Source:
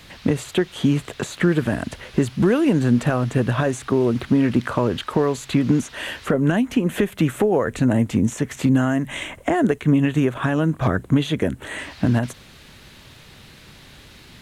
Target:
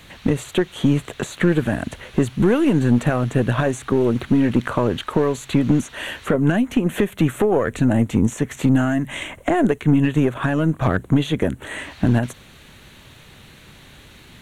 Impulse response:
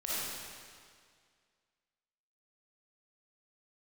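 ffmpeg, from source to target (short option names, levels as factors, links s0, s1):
-af "aeval=exprs='0.531*(cos(1*acos(clip(val(0)/0.531,-1,1)))-cos(1*PI/2))+0.0473*(cos(4*acos(clip(val(0)/0.531,-1,1)))-cos(4*PI/2))+0.0422*(cos(5*acos(clip(val(0)/0.531,-1,1)))-cos(5*PI/2))+0.0266*(cos(7*acos(clip(val(0)/0.531,-1,1)))-cos(7*PI/2))':c=same,equalizer=f=5000:w=5.4:g=-11"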